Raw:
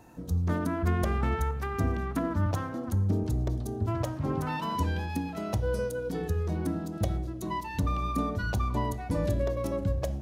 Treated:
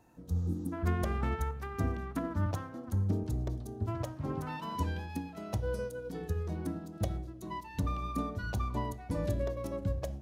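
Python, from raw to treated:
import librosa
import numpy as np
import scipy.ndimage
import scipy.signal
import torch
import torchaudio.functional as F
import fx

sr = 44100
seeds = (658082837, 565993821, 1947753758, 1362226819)

y = fx.spec_repair(x, sr, seeds[0], start_s=0.38, length_s=0.32, low_hz=400.0, high_hz=7800.0, source='before')
y = fx.upward_expand(y, sr, threshold_db=-37.0, expansion=1.5)
y = y * 10.0 ** (-3.0 / 20.0)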